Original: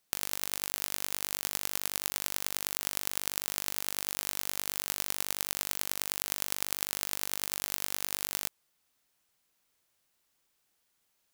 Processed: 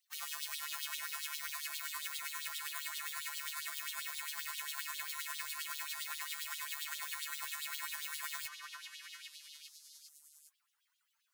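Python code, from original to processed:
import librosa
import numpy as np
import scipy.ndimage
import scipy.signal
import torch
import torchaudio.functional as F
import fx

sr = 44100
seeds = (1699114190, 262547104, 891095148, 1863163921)

p1 = fx.spec_topn(x, sr, count=64)
p2 = np.maximum(p1, 0.0)
p3 = fx.filter_lfo_highpass(p2, sr, shape='sine', hz=7.5, low_hz=990.0, high_hz=3700.0, q=3.5)
p4 = p3 + fx.echo_stepped(p3, sr, ms=403, hz=1300.0, octaves=0.7, feedback_pct=70, wet_db=-1, dry=0)
y = p4 * librosa.db_to_amplitude(5.5)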